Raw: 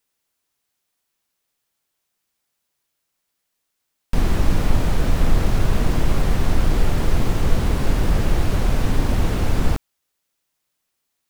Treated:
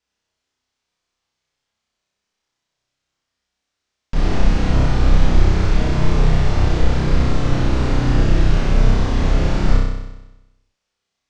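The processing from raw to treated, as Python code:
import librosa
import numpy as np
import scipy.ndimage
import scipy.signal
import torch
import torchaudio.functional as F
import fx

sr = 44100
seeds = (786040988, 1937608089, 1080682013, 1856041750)

p1 = fx.octave_divider(x, sr, octaves=2, level_db=-1.0)
p2 = scipy.signal.sosfilt(scipy.signal.butter(4, 6500.0, 'lowpass', fs=sr, output='sos'), p1)
p3 = p2 + fx.room_flutter(p2, sr, wall_m=5.4, rt60_s=1.0, dry=0)
y = p3 * 10.0 ** (-2.0 / 20.0)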